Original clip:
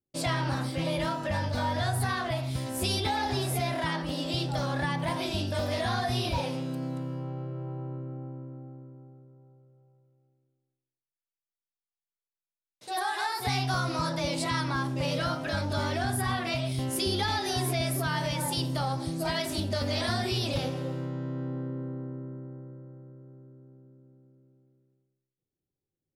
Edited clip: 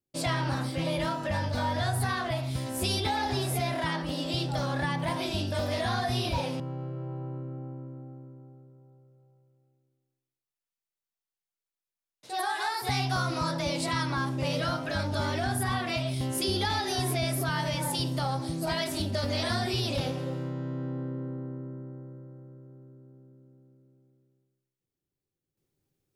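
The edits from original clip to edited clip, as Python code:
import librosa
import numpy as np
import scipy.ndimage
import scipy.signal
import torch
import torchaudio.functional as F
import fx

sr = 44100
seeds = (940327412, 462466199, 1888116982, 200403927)

y = fx.edit(x, sr, fx.cut(start_s=6.6, length_s=0.58), tone=tone)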